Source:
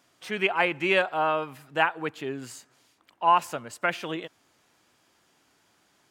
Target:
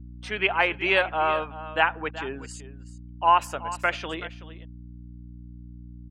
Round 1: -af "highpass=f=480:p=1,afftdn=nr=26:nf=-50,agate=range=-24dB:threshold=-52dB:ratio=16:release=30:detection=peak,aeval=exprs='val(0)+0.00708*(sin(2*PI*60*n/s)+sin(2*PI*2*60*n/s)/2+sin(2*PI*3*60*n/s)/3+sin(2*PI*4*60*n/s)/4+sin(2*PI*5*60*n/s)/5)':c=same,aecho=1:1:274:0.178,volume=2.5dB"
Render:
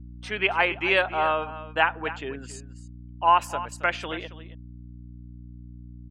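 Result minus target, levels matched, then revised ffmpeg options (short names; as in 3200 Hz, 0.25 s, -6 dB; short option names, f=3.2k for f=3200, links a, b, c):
echo 0.103 s early
-af "highpass=f=480:p=1,afftdn=nr=26:nf=-50,agate=range=-24dB:threshold=-52dB:ratio=16:release=30:detection=peak,aeval=exprs='val(0)+0.00708*(sin(2*PI*60*n/s)+sin(2*PI*2*60*n/s)/2+sin(2*PI*3*60*n/s)/3+sin(2*PI*4*60*n/s)/4+sin(2*PI*5*60*n/s)/5)':c=same,aecho=1:1:377:0.178,volume=2.5dB"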